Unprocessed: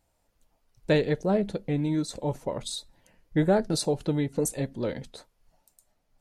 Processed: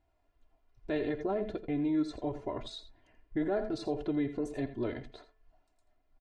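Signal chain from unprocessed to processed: echo 84 ms -14 dB; limiter -21.5 dBFS, peak gain reduction 9.5 dB; LPF 2700 Hz 12 dB/oct; comb 2.9 ms, depth 81%; de-hum 219 Hz, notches 13; gain -4 dB

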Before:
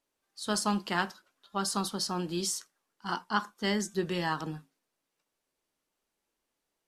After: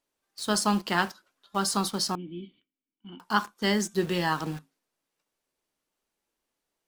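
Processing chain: in parallel at -4 dB: bit-crush 7-bit; 2.15–3.2 on the sum: vocal tract filter i

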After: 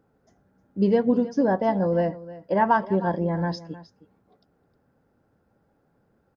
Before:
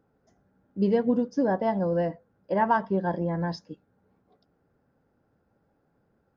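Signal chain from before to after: echo 0.311 s -17 dB; gain +3 dB

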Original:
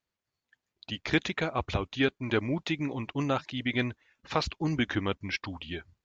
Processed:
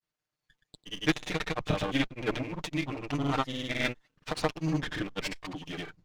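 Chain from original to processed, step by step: minimum comb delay 6.6 ms; grains, pitch spread up and down by 0 st; gain +1.5 dB

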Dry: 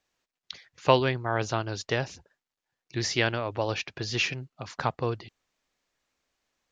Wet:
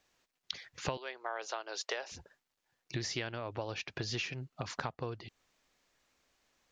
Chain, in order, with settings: 0.97–2.12 HPF 460 Hz 24 dB/oct; compressor 10:1, threshold -39 dBFS, peak gain reduction 24.5 dB; gain +4.5 dB

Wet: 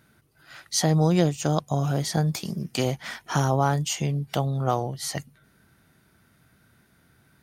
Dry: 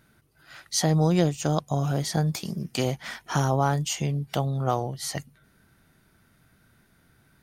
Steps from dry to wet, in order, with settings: HPF 53 Hz; gain +1 dB

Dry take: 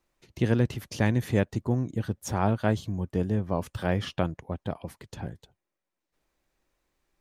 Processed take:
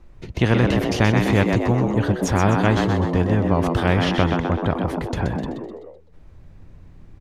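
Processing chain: RIAA curve playback; frequency-shifting echo 0.127 s, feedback 45%, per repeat +80 Hz, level -7.5 dB; spectral compressor 2:1; gain +2.5 dB

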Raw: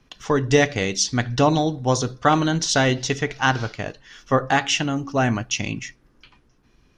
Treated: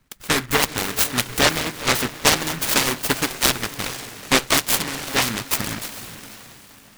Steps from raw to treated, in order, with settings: harmonic-percussive split harmonic -15 dB; in parallel at -6.5 dB: requantised 6-bit, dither none; on the sum: diffused feedback echo 0.461 s, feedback 42%, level -12 dB; noise-modulated delay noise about 1500 Hz, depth 0.4 ms

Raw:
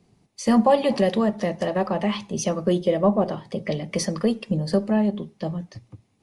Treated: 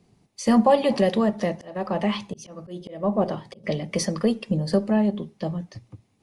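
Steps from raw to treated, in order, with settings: 1.48–3.64 auto swell 0.357 s

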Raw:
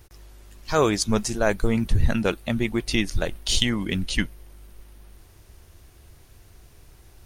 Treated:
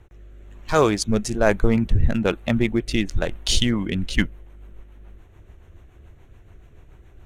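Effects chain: Wiener smoothing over 9 samples; rotary speaker horn 1.1 Hz, later 7 Hz, at 3.37; gain +4.5 dB

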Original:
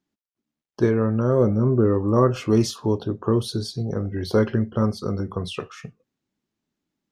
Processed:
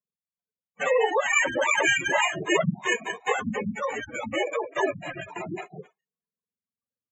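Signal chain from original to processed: spectrum mirrored in octaves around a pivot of 970 Hz; gate -38 dBFS, range -15 dB; comb 1.7 ms, depth 42%; sample-rate reducer 4700 Hz, jitter 0%; spectral gate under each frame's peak -15 dB strong; speaker cabinet 220–7600 Hz, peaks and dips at 430 Hz +4 dB, 910 Hz +6 dB, 2700 Hz -6 dB; endless flanger 2.4 ms +0.34 Hz; gain +4 dB

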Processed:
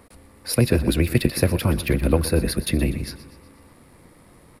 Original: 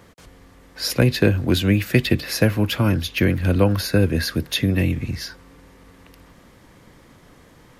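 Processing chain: bell 9900 Hz +12 dB 0.26 oct; granular stretch 0.59×, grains 22 ms; thirty-one-band EQ 1600 Hz -5 dB, 3150 Hz -7 dB, 6300 Hz -10 dB; on a send: feedback echo 0.122 s, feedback 52%, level -15 dB

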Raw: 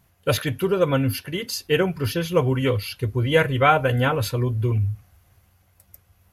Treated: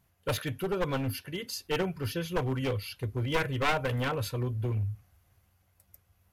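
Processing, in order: one-sided fold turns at -17.5 dBFS; gain -8.5 dB

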